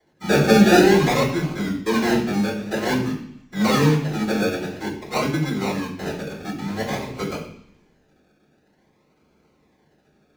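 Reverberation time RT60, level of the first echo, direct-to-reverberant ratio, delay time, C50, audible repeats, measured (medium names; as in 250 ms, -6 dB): 0.65 s, no echo, -14.0 dB, no echo, 7.0 dB, no echo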